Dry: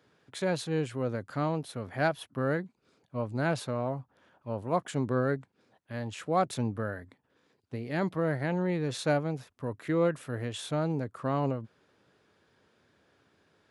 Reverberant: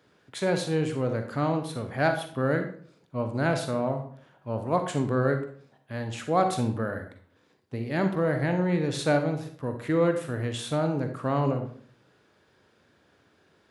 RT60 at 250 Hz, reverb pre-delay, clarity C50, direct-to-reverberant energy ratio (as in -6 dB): 0.65 s, 39 ms, 8.0 dB, 6.0 dB